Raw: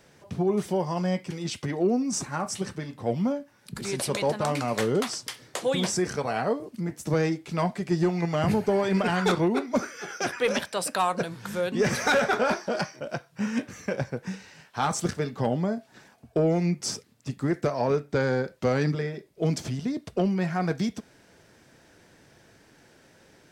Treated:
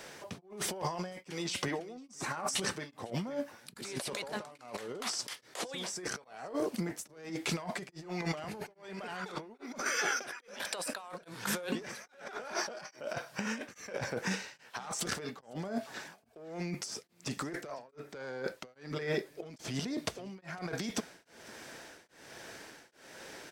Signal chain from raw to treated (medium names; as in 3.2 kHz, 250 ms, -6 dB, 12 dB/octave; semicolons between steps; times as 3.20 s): peaking EQ 110 Hz -5.5 dB 2.5 oct; in parallel at -6.5 dB: one-sided clip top -26 dBFS; on the sum: bass shelf 230 Hz -10 dB; compressor with a negative ratio -37 dBFS, ratio -1; on a send: delay 503 ms -21.5 dB; on the sum: tremolo of two beating tones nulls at 1.2 Hz